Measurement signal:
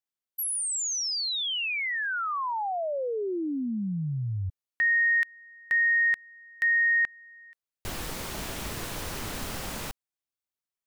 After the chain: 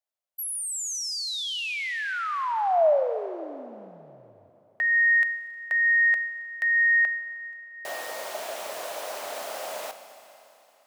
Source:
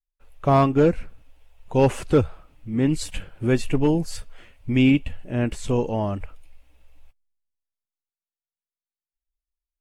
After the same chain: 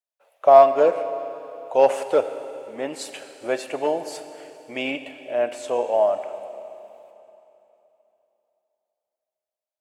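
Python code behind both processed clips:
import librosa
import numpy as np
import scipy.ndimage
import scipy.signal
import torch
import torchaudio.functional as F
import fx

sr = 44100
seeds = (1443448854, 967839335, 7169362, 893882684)

y = fx.highpass_res(x, sr, hz=620.0, q=4.9)
y = fx.rev_schroeder(y, sr, rt60_s=3.2, comb_ms=30, drr_db=10.0)
y = F.gain(torch.from_numpy(y), -2.0).numpy()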